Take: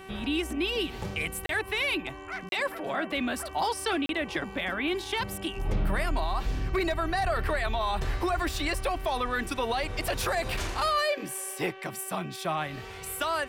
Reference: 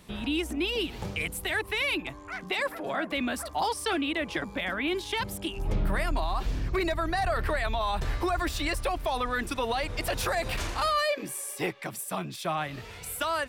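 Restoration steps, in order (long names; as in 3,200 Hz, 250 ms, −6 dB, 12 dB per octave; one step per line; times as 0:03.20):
hum removal 382.9 Hz, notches 8
repair the gap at 0:01.46/0:02.49/0:04.06, 32 ms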